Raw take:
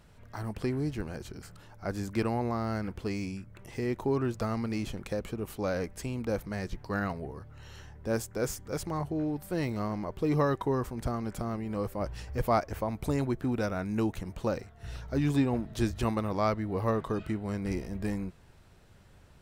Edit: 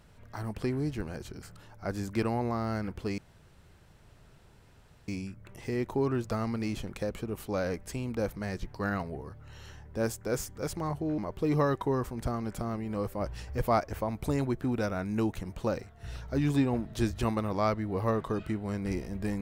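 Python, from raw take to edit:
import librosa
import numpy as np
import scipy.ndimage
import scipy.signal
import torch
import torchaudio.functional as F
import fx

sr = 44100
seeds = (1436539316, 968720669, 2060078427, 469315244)

y = fx.edit(x, sr, fx.insert_room_tone(at_s=3.18, length_s=1.9),
    fx.cut(start_s=9.28, length_s=0.7), tone=tone)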